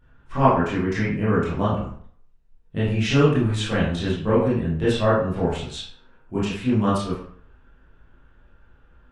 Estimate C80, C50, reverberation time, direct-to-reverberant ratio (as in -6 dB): 6.0 dB, 1.5 dB, 0.55 s, -11.0 dB